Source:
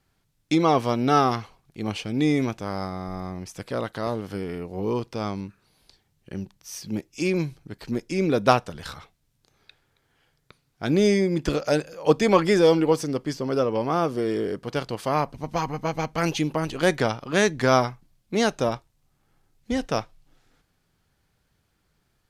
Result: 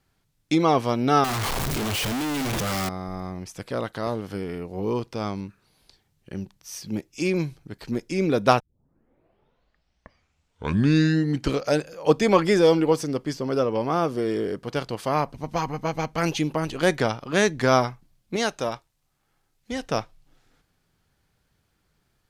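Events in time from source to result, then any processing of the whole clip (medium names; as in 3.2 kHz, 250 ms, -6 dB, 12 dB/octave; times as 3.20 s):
1.24–2.89 s: one-bit comparator
8.60 s: tape start 3.13 s
18.36–19.87 s: bass shelf 500 Hz -7.5 dB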